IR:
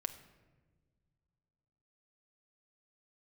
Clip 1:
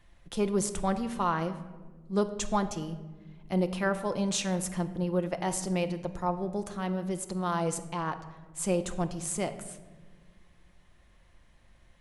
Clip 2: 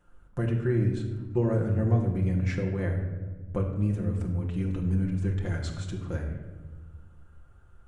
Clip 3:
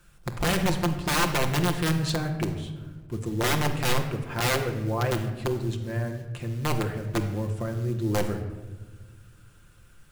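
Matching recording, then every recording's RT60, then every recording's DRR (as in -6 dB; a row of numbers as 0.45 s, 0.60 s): 1; no single decay rate, 1.4 s, no single decay rate; 8.0 dB, -0.5 dB, 3.5 dB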